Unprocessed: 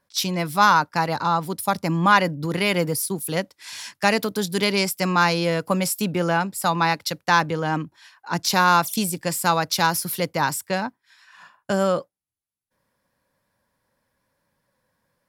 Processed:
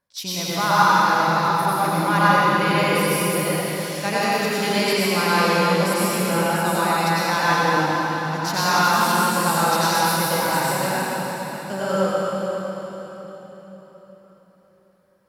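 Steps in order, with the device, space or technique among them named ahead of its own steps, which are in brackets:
cathedral (convolution reverb RT60 4.3 s, pre-delay 85 ms, DRR −10 dB)
level −8 dB

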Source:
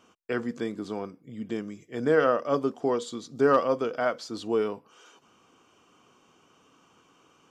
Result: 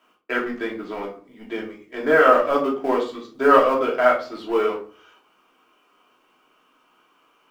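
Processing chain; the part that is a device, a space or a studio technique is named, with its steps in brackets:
high-pass filter 61 Hz 24 dB per octave
phone line with mismatched companding (band-pass filter 380–3,400 Hz; mu-law and A-law mismatch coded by A)
parametric band 2,000 Hz +4.5 dB 1.9 octaves
rectangular room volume 290 cubic metres, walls furnished, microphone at 2.9 metres
level +3 dB

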